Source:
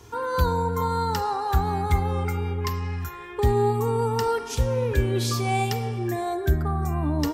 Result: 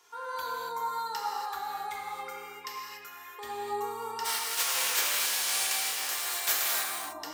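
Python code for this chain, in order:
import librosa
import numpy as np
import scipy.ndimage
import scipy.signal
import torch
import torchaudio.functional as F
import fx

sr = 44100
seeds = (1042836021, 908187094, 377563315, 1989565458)

y = fx.spec_flatten(x, sr, power=0.23, at=(4.24, 6.83), fade=0.02)
y = scipy.signal.sosfilt(scipy.signal.butter(2, 890.0, 'highpass', fs=sr, output='sos'), y)
y = fx.rev_gated(y, sr, seeds[0], gate_ms=310, shape='flat', drr_db=-2.0)
y = y * 10.0 ** (-8.0 / 20.0)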